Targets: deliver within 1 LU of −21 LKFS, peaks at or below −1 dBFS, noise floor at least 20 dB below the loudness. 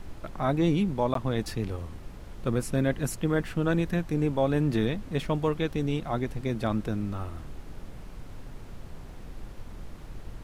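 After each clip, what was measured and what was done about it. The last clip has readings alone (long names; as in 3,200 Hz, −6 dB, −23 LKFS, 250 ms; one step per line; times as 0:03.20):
number of dropouts 1; longest dropout 13 ms; background noise floor −44 dBFS; target noise floor −49 dBFS; integrated loudness −28.5 LKFS; sample peak −13.0 dBFS; target loudness −21.0 LKFS
→ repair the gap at 0:01.14, 13 ms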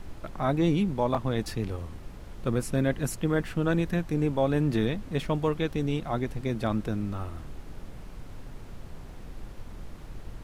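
number of dropouts 0; background noise floor −44 dBFS; target noise floor −49 dBFS
→ noise reduction from a noise print 6 dB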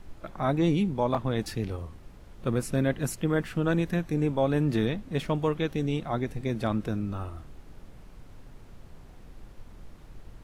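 background noise floor −49 dBFS; integrated loudness −28.5 LKFS; sample peak −13.0 dBFS; target loudness −21.0 LKFS
→ level +7.5 dB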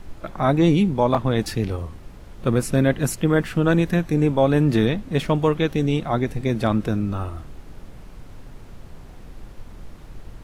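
integrated loudness −21.0 LKFS; sample peak −5.5 dBFS; background noise floor −42 dBFS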